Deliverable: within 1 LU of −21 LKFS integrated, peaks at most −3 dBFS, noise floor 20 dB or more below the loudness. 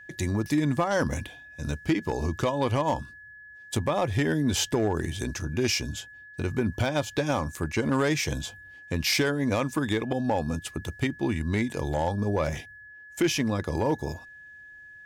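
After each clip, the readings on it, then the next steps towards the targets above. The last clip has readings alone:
share of clipped samples 0.4%; peaks flattened at −17.0 dBFS; interfering tone 1,700 Hz; level of the tone −45 dBFS; integrated loudness −28.0 LKFS; sample peak −17.0 dBFS; target loudness −21.0 LKFS
→ clipped peaks rebuilt −17 dBFS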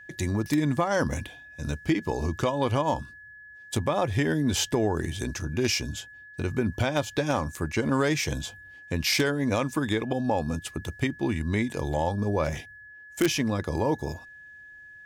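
share of clipped samples 0.0%; interfering tone 1,700 Hz; level of the tone −45 dBFS
→ notch filter 1,700 Hz, Q 30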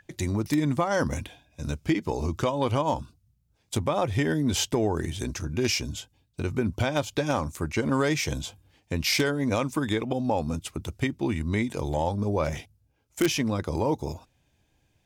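interfering tone none found; integrated loudness −27.5 LKFS; sample peak −8.0 dBFS; target loudness −21.0 LKFS
→ level +6.5 dB
brickwall limiter −3 dBFS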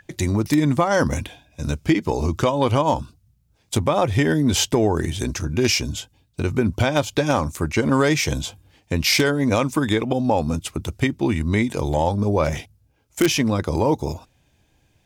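integrated loudness −21.0 LKFS; sample peak −3.0 dBFS; background noise floor −63 dBFS

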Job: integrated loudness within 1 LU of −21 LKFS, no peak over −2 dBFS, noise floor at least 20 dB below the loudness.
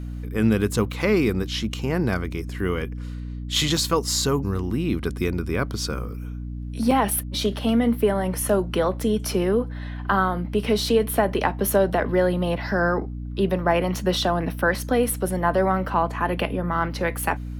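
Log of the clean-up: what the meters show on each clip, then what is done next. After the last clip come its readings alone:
number of dropouts 2; longest dropout 2.8 ms; mains hum 60 Hz; hum harmonics up to 300 Hz; level of the hum −29 dBFS; integrated loudness −23.5 LKFS; sample peak −5.5 dBFS; target loudness −21.0 LKFS
→ repair the gap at 0:03.77/0:06.91, 2.8 ms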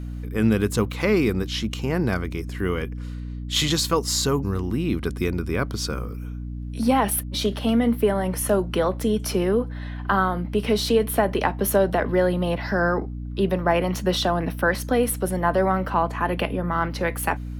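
number of dropouts 0; mains hum 60 Hz; hum harmonics up to 300 Hz; level of the hum −29 dBFS
→ hum removal 60 Hz, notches 5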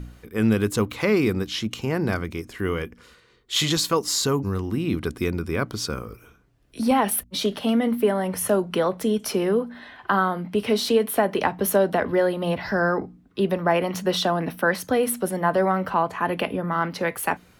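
mains hum none found; integrated loudness −23.5 LKFS; sample peak −6.0 dBFS; target loudness −21.0 LKFS
→ level +2.5 dB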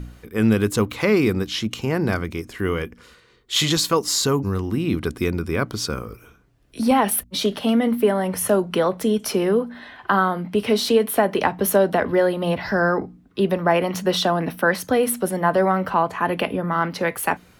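integrated loudness −21.0 LKFS; sample peak −3.5 dBFS; background noise floor −53 dBFS

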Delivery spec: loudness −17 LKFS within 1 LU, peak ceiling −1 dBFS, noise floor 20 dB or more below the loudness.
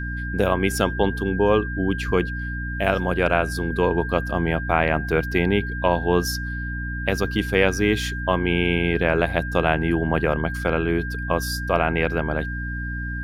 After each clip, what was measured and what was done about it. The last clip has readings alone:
mains hum 60 Hz; hum harmonics up to 300 Hz; level of the hum −27 dBFS; interfering tone 1,600 Hz; level of the tone −31 dBFS; integrated loudness −22.5 LKFS; sample peak −3.5 dBFS; target loudness −17.0 LKFS
→ mains-hum notches 60/120/180/240/300 Hz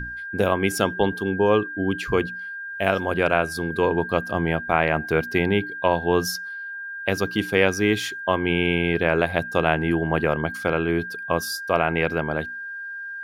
mains hum none found; interfering tone 1,600 Hz; level of the tone −31 dBFS
→ notch filter 1,600 Hz, Q 30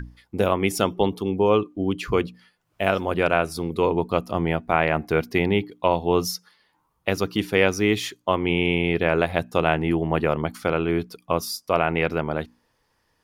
interfering tone none found; integrated loudness −23.5 LKFS; sample peak −4.0 dBFS; target loudness −17.0 LKFS
→ level +6.5 dB
brickwall limiter −1 dBFS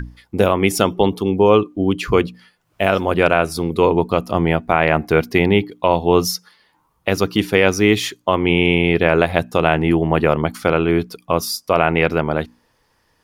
integrated loudness −17.5 LKFS; sample peak −1.0 dBFS; background noise floor −63 dBFS

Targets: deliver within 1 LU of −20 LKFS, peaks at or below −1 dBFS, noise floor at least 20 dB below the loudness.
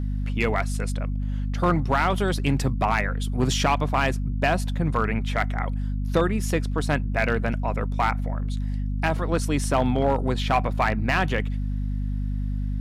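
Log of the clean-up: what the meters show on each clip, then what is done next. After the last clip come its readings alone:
share of clipped samples 0.5%; peaks flattened at −13.0 dBFS; mains hum 50 Hz; hum harmonics up to 250 Hz; level of the hum −24 dBFS; integrated loudness −25.0 LKFS; sample peak −13.0 dBFS; target loudness −20.0 LKFS
→ clipped peaks rebuilt −13 dBFS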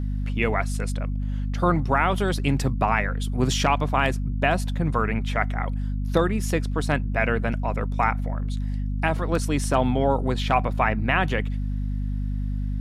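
share of clipped samples 0.0%; mains hum 50 Hz; hum harmonics up to 250 Hz; level of the hum −24 dBFS
→ hum removal 50 Hz, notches 5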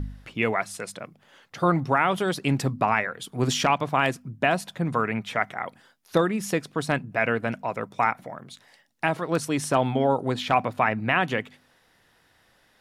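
mains hum none found; integrated loudness −25.5 LKFS; sample peak −7.5 dBFS; target loudness −20.0 LKFS
→ level +5.5 dB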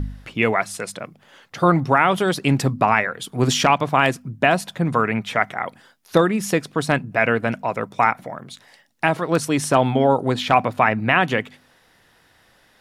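integrated loudness −20.0 LKFS; sample peak −2.0 dBFS; background noise floor −57 dBFS

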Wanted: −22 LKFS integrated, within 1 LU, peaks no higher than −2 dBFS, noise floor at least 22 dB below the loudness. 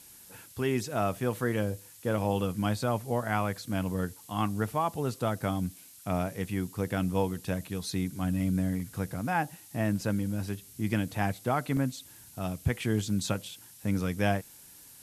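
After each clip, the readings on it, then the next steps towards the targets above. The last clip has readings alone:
number of dropouts 3; longest dropout 1.4 ms; background noise floor −53 dBFS; target noise floor −54 dBFS; integrated loudness −31.5 LKFS; sample peak −13.0 dBFS; target loudness −22.0 LKFS
→ repair the gap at 0:08.80/0:10.01/0:11.77, 1.4 ms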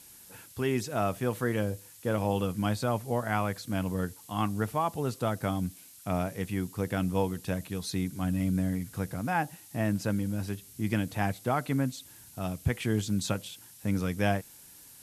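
number of dropouts 0; background noise floor −53 dBFS; target noise floor −54 dBFS
→ broadband denoise 6 dB, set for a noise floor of −53 dBFS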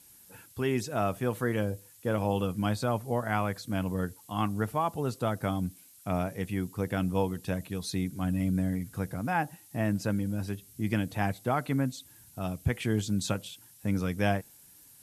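background noise floor −56 dBFS; integrated loudness −31.5 LKFS; sample peak −13.0 dBFS; target loudness −22.0 LKFS
→ level +9.5 dB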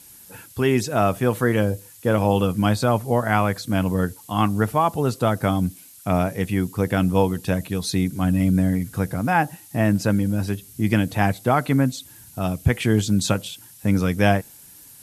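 integrated loudness −22.0 LKFS; sample peak −3.5 dBFS; background noise floor −47 dBFS

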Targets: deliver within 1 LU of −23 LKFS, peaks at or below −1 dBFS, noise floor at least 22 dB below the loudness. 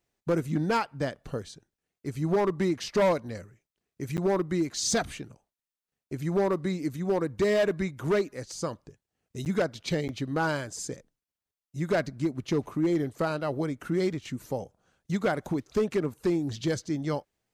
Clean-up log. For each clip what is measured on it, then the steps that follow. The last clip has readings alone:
share of clipped samples 1.6%; peaks flattened at −19.5 dBFS; number of dropouts 3; longest dropout 9.3 ms; integrated loudness −29.5 LKFS; sample peak −19.5 dBFS; target loudness −23.0 LKFS
→ clipped peaks rebuilt −19.5 dBFS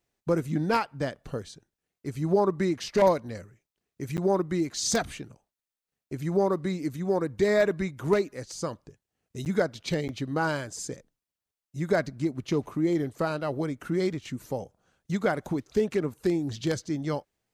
share of clipped samples 0.0%; number of dropouts 3; longest dropout 9.3 ms
→ repair the gap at 0:04.17/0:09.45/0:10.08, 9.3 ms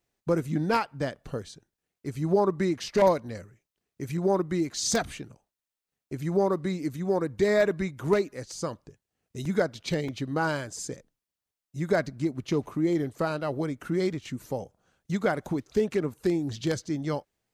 number of dropouts 0; integrated loudness −28.5 LKFS; sample peak −10.5 dBFS; target loudness −23.0 LKFS
→ level +5.5 dB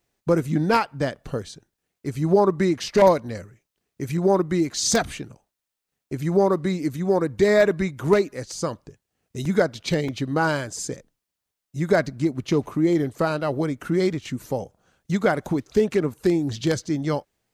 integrated loudness −23.0 LKFS; sample peak −5.0 dBFS; background noise floor −84 dBFS

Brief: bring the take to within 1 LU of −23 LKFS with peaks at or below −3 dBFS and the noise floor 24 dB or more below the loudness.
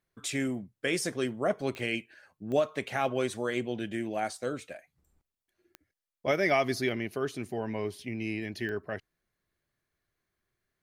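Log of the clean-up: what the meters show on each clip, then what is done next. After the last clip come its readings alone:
number of clicks 4; integrated loudness −32.0 LKFS; sample peak −15.0 dBFS; target loudness −23.0 LKFS
→ click removal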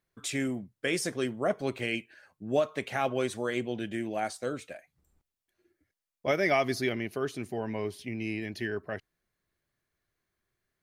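number of clicks 0; integrated loudness −32.0 LKFS; sample peak −15.0 dBFS; target loudness −23.0 LKFS
→ level +9 dB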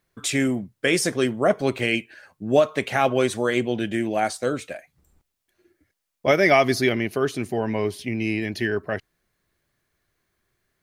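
integrated loudness −23.0 LKFS; sample peak −6.0 dBFS; background noise floor −79 dBFS

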